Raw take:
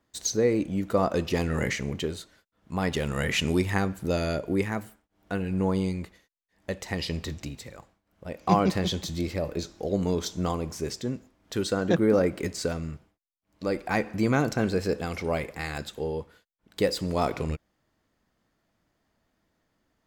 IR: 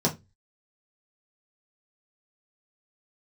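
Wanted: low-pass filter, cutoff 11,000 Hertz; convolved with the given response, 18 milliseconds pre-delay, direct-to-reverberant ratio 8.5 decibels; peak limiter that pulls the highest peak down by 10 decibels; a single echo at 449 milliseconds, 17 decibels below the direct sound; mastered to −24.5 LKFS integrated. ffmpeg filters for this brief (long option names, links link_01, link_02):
-filter_complex "[0:a]lowpass=11000,alimiter=limit=-16dB:level=0:latency=1,aecho=1:1:449:0.141,asplit=2[link_01][link_02];[1:a]atrim=start_sample=2205,adelay=18[link_03];[link_02][link_03]afir=irnorm=-1:irlink=0,volume=-19.5dB[link_04];[link_01][link_04]amix=inputs=2:normalize=0,volume=2.5dB"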